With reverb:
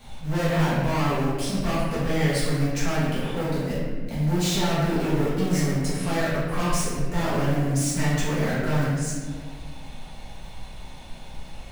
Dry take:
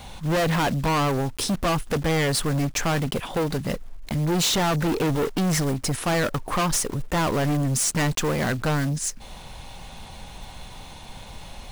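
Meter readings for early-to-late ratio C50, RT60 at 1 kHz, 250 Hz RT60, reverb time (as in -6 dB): -1.5 dB, 1.4 s, 2.2 s, 1.6 s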